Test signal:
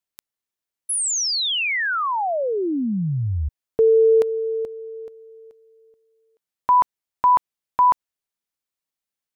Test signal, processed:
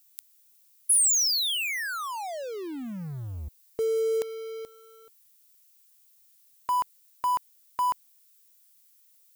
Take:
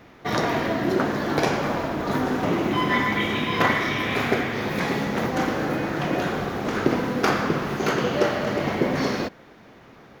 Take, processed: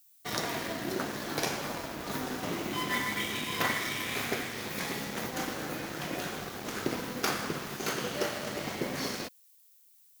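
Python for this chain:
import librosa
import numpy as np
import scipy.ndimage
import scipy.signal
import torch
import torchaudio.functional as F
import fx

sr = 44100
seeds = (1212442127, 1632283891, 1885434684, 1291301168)

y = np.sign(x) * np.maximum(np.abs(x) - 10.0 ** (-36.0 / 20.0), 0.0)
y = F.preemphasis(torch.from_numpy(y), 0.8).numpy()
y = fx.dmg_noise_colour(y, sr, seeds[0], colour='violet', level_db=-64.0)
y = y * librosa.db_to_amplitude(3.0)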